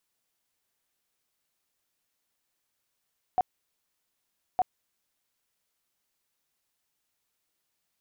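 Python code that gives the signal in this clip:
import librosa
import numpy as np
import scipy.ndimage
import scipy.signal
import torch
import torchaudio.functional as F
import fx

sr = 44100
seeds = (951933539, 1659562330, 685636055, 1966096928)

y = fx.tone_burst(sr, hz=737.0, cycles=21, every_s=1.21, bursts=2, level_db=-19.5)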